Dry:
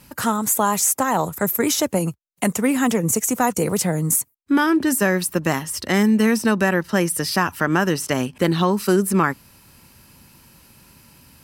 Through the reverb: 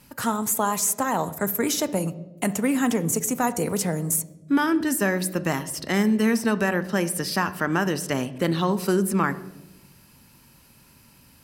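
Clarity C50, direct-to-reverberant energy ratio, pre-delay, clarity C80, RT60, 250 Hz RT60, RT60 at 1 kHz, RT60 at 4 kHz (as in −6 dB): 15.5 dB, 12.0 dB, 3 ms, 18.0 dB, 0.95 s, 1.4 s, 0.80 s, 0.65 s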